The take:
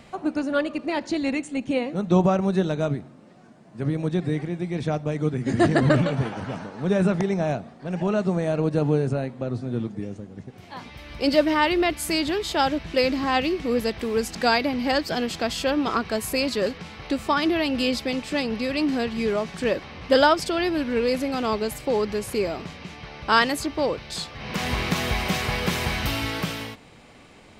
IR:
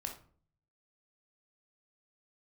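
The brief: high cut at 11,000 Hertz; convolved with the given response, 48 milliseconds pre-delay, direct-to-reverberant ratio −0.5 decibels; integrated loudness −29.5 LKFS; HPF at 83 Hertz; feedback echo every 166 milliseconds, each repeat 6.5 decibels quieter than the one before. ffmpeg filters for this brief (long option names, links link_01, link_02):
-filter_complex "[0:a]highpass=83,lowpass=11000,aecho=1:1:166|332|498|664|830|996:0.473|0.222|0.105|0.0491|0.0231|0.0109,asplit=2[link_01][link_02];[1:a]atrim=start_sample=2205,adelay=48[link_03];[link_02][link_03]afir=irnorm=-1:irlink=0,volume=1.5dB[link_04];[link_01][link_04]amix=inputs=2:normalize=0,volume=-9.5dB"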